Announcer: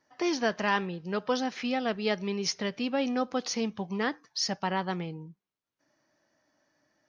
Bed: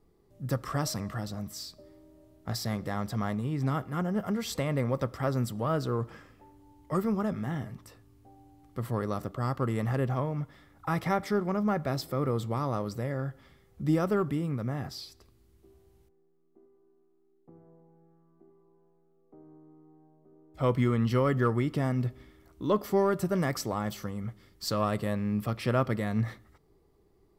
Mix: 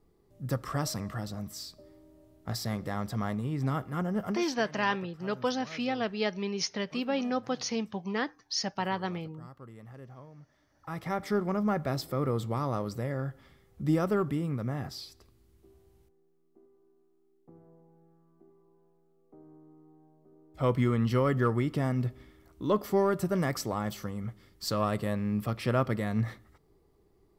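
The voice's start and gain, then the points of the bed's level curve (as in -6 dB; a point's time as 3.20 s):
4.15 s, -1.5 dB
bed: 4.30 s -1 dB
4.55 s -19 dB
10.41 s -19 dB
11.33 s -0.5 dB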